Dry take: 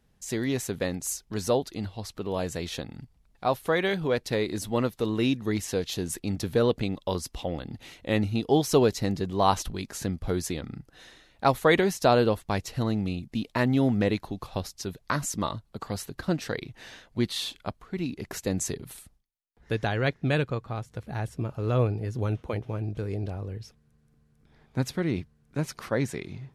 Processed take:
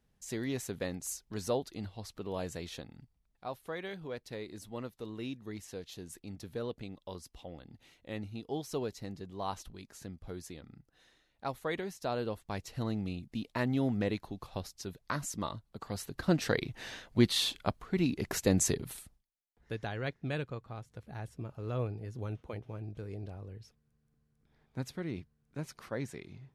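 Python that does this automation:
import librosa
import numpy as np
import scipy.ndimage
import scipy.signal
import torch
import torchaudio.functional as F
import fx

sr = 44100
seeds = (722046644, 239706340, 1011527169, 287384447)

y = fx.gain(x, sr, db=fx.line((2.48, -7.5), (3.5, -15.0), (12.02, -15.0), (12.85, -7.5), (15.82, -7.5), (16.48, 1.5), (18.74, 1.5), (19.76, -10.5)))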